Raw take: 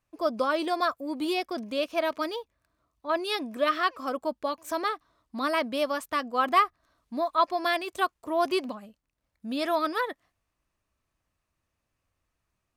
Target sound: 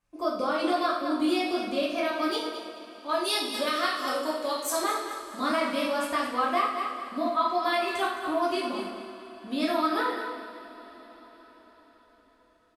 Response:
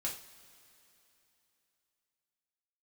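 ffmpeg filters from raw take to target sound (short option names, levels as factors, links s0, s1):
-filter_complex "[0:a]asettb=1/sr,asplit=3[s0][s1][s2];[s0]atrim=end=2.314[s3];[s1]atrim=start=2.31:end=4.79,asetpts=PTS-STARTPTS,afade=t=in:d=0.004:c=qsin,afade=t=out:st=2.476:d=0.004:c=qsin,bass=f=250:g=-7,treble=f=4000:g=12[s4];[s2]atrim=start=4.786[s5];[s3][s4]acrossfade=d=0.004:c1=hsin:c2=qsin[s6];[s6][s5]acrossfade=d=0.004:c1=qsin:c2=hsin,aecho=1:1:215|430|645:0.266|0.0772|0.0224,acompressor=threshold=0.0447:ratio=3,equalizer=f=260:t=o:w=0.27:g=2[s7];[1:a]atrim=start_sample=2205,asetrate=24696,aresample=44100[s8];[s7][s8]afir=irnorm=-1:irlink=0,volume=0.794"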